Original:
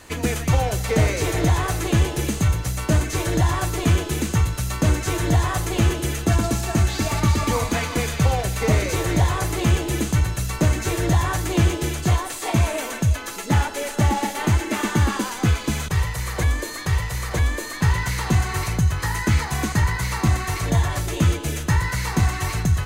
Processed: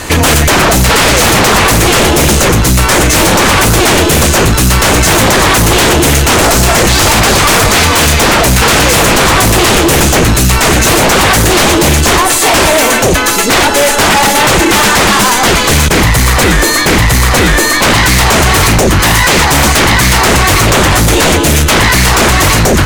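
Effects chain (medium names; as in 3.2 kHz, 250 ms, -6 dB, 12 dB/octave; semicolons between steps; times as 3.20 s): sine folder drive 18 dB, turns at -6.5 dBFS; trim +2.5 dB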